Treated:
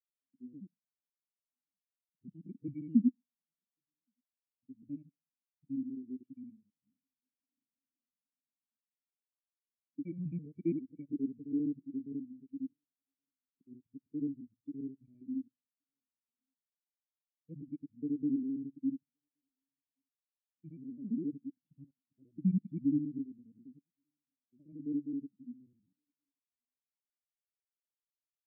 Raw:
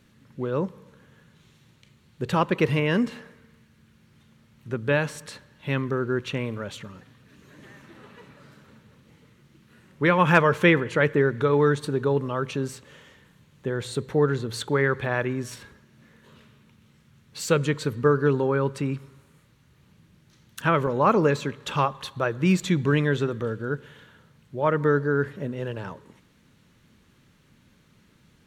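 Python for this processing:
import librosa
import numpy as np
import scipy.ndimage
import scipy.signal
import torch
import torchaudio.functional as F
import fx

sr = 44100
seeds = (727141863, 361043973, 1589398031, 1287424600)

p1 = fx.local_reverse(x, sr, ms=67.0)
p2 = fx.formant_cascade(p1, sr, vowel='i')
p3 = p2 + fx.echo_single(p2, sr, ms=1123, db=-24.0, dry=0)
p4 = fx.spectral_expand(p3, sr, expansion=2.5)
y = p4 * librosa.db_to_amplitude(2.5)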